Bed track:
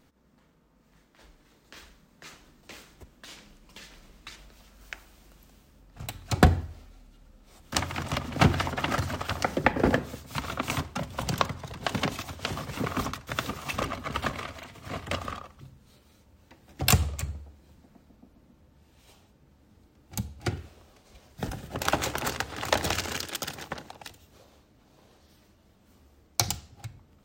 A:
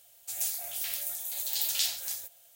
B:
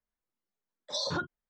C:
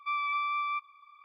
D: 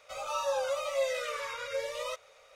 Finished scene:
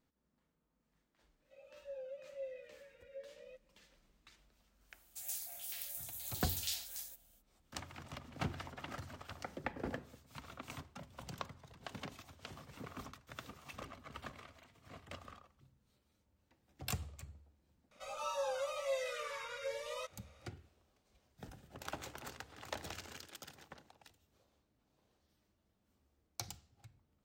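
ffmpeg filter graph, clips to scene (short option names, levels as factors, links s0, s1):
-filter_complex "[4:a]asplit=2[s0][s1];[0:a]volume=0.119[s2];[s0]asplit=3[s3][s4][s5];[s3]bandpass=f=530:t=q:w=8,volume=1[s6];[s4]bandpass=f=1840:t=q:w=8,volume=0.501[s7];[s5]bandpass=f=2480:t=q:w=8,volume=0.355[s8];[s6][s7][s8]amix=inputs=3:normalize=0,atrim=end=2.55,asetpts=PTS-STARTPTS,volume=0.211,afade=t=in:d=0.004:c=hsin,afade=t=out:st=2.546:d=0.004:c=hsin,adelay=1410[s9];[1:a]atrim=end=2.55,asetpts=PTS-STARTPTS,volume=0.299,afade=t=in:d=0.05,afade=t=out:st=2.5:d=0.05,adelay=4880[s10];[s1]atrim=end=2.55,asetpts=PTS-STARTPTS,volume=0.447,afade=t=in:d=0.004:c=hsin,afade=t=out:st=2.546:d=0.004:c=hsin,adelay=17910[s11];[s2][s9][s10][s11]amix=inputs=4:normalize=0"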